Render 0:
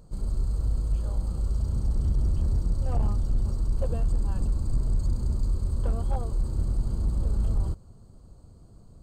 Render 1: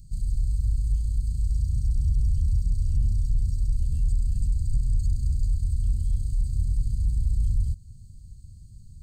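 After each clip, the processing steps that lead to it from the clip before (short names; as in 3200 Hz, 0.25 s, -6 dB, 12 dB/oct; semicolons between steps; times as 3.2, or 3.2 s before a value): Chebyshev band-stop 110–5400 Hz, order 2; in parallel at +1 dB: compressor, threshold -34 dBFS, peak gain reduction 12.5 dB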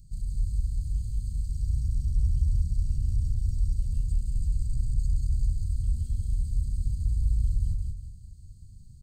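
feedback echo 0.183 s, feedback 39%, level -3 dB; gain -4.5 dB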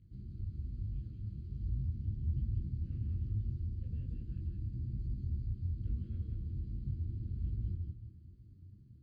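speaker cabinet 130–2400 Hz, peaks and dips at 160 Hz -7 dB, 330 Hz +9 dB, 780 Hz -9 dB; detuned doubles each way 41 cents; gain +6 dB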